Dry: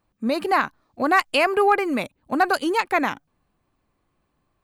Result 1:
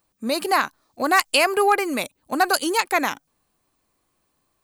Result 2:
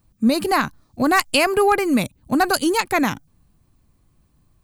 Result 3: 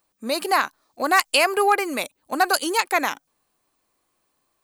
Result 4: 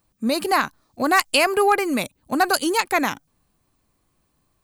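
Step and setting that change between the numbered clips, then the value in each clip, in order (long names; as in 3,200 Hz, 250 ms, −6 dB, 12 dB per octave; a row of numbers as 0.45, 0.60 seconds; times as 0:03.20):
bass and treble, bass: −6, +15, −14, +3 decibels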